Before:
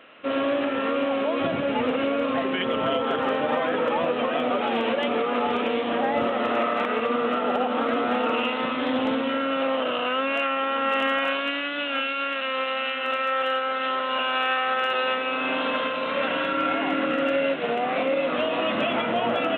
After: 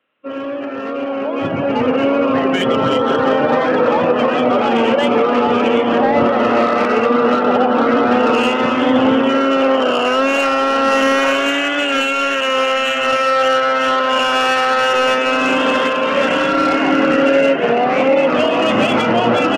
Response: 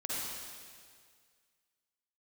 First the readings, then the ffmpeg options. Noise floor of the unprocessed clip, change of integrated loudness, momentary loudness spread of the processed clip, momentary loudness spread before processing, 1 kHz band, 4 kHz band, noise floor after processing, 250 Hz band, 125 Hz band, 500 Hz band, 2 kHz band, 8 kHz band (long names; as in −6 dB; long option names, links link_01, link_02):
−28 dBFS, +10.0 dB, 2 LU, 2 LU, +9.5 dB, +8.5 dB, −22 dBFS, +11.0 dB, +13.0 dB, +10.5 dB, +8.5 dB, can't be measured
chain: -filter_complex "[0:a]bandreject=frequency=670:width=12,asplit=9[link_01][link_02][link_03][link_04][link_05][link_06][link_07][link_08][link_09];[link_02]adelay=360,afreqshift=130,volume=-13dB[link_10];[link_03]adelay=720,afreqshift=260,volume=-16.7dB[link_11];[link_04]adelay=1080,afreqshift=390,volume=-20.5dB[link_12];[link_05]adelay=1440,afreqshift=520,volume=-24.2dB[link_13];[link_06]adelay=1800,afreqshift=650,volume=-28dB[link_14];[link_07]adelay=2160,afreqshift=780,volume=-31.7dB[link_15];[link_08]adelay=2520,afreqshift=910,volume=-35.5dB[link_16];[link_09]adelay=2880,afreqshift=1040,volume=-39.2dB[link_17];[link_01][link_10][link_11][link_12][link_13][link_14][link_15][link_16][link_17]amix=inputs=9:normalize=0,afftdn=noise_reduction=20:noise_floor=-33,equalizer=frequency=110:width_type=o:width=0.96:gain=5.5,acrossover=split=400|640[link_18][link_19][link_20];[link_20]asoftclip=type=tanh:threshold=-25dB[link_21];[link_18][link_19][link_21]amix=inputs=3:normalize=0,dynaudnorm=framelen=150:gausssize=21:maxgain=13dB"